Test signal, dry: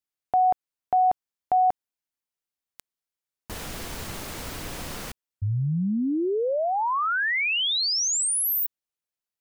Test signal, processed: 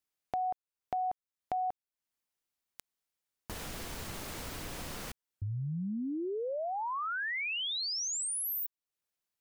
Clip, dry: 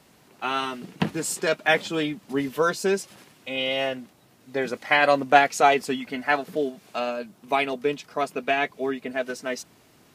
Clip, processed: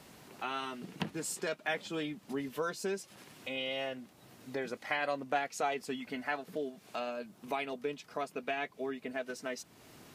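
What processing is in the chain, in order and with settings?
compression 2:1, threshold -46 dBFS; trim +1.5 dB

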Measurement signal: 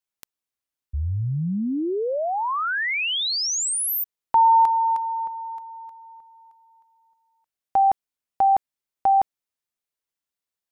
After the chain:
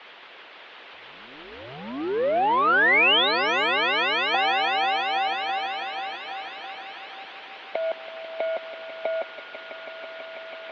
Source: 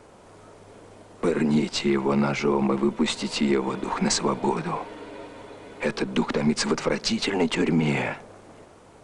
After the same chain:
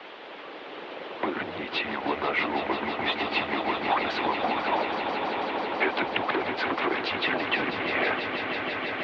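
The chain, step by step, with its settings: recorder AGC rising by 5.3 dB/s; Chebyshev shaper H 6 -21 dB, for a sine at 1 dBFS; compression, threshold -24 dBFS; saturation -23 dBFS; added noise white -44 dBFS; mistuned SSB -130 Hz 490–3500 Hz; on a send: echo with a slow build-up 164 ms, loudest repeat 5, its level -10 dB; on the sum: harmonic-percussive split percussive +7 dB; trim +2 dB

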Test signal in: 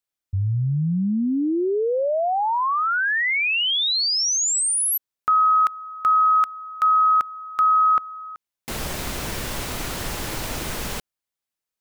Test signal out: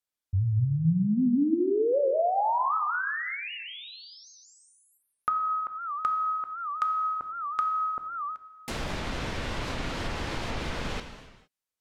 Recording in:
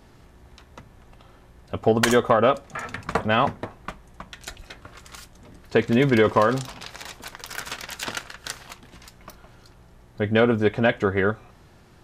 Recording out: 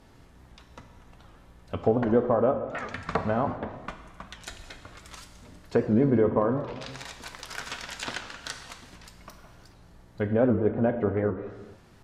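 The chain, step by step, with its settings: low-pass that closes with the level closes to 750 Hz, closed at -18 dBFS; gated-style reverb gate 490 ms falling, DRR 6.5 dB; warped record 78 rpm, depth 160 cents; trim -3.5 dB

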